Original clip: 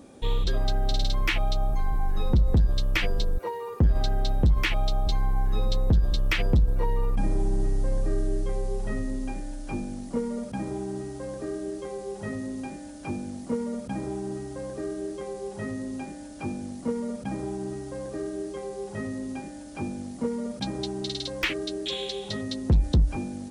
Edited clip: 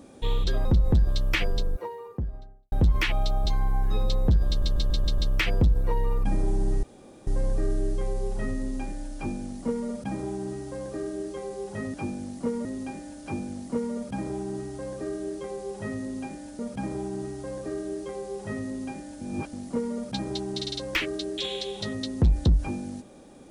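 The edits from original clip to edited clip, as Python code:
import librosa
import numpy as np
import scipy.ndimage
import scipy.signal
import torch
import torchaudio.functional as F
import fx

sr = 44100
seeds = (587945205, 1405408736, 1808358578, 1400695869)

y = fx.studio_fade_out(x, sr, start_s=3.01, length_s=1.33)
y = fx.edit(y, sr, fx.cut(start_s=0.65, length_s=1.62),
    fx.stutter(start_s=6.1, slice_s=0.14, count=6),
    fx.insert_room_tone(at_s=7.75, length_s=0.44),
    fx.move(start_s=16.36, length_s=0.71, to_s=12.42),
    fx.reverse_span(start_s=19.69, length_s=0.32), tone=tone)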